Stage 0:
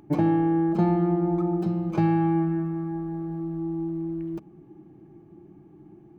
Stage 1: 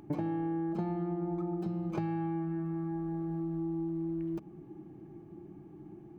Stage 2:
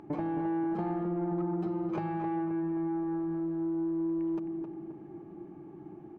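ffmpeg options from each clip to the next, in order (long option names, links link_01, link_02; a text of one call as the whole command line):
ffmpeg -i in.wav -af "acompressor=threshold=-32dB:ratio=6" out.wav
ffmpeg -i in.wav -filter_complex "[0:a]asplit=2[link_01][link_02];[link_02]adelay=264,lowpass=frequency=2000:poles=1,volume=-6.5dB,asplit=2[link_03][link_04];[link_04]adelay=264,lowpass=frequency=2000:poles=1,volume=0.49,asplit=2[link_05][link_06];[link_06]adelay=264,lowpass=frequency=2000:poles=1,volume=0.49,asplit=2[link_07][link_08];[link_08]adelay=264,lowpass=frequency=2000:poles=1,volume=0.49,asplit=2[link_09][link_10];[link_10]adelay=264,lowpass=frequency=2000:poles=1,volume=0.49,asplit=2[link_11][link_12];[link_12]adelay=264,lowpass=frequency=2000:poles=1,volume=0.49[link_13];[link_01][link_03][link_05][link_07][link_09][link_11][link_13]amix=inputs=7:normalize=0,asplit=2[link_14][link_15];[link_15]highpass=frequency=720:poles=1,volume=15dB,asoftclip=type=tanh:threshold=-22.5dB[link_16];[link_14][link_16]amix=inputs=2:normalize=0,lowpass=frequency=1100:poles=1,volume=-6dB" out.wav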